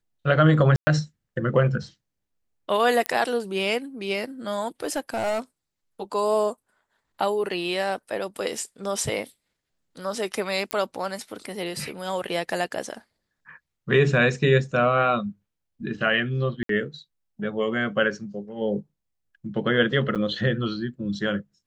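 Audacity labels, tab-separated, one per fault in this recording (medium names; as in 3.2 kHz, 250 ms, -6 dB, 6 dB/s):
0.760000	0.870000	dropout 110 ms
3.060000	3.060000	pop -10 dBFS
4.830000	5.400000	clipped -21.5 dBFS
10.710000	10.710000	pop -10 dBFS
16.630000	16.690000	dropout 63 ms
20.150000	20.160000	dropout 7.7 ms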